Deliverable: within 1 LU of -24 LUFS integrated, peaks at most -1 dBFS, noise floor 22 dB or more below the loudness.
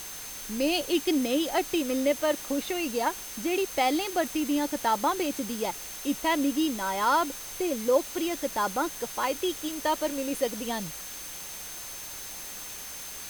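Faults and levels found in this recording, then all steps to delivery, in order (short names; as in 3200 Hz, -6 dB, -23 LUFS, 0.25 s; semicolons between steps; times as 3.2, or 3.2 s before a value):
steady tone 6300 Hz; tone level -44 dBFS; noise floor -40 dBFS; noise floor target -51 dBFS; loudness -29.0 LUFS; peak -13.0 dBFS; loudness target -24.0 LUFS
-> notch 6300 Hz, Q 30; denoiser 11 dB, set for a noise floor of -40 dBFS; gain +5 dB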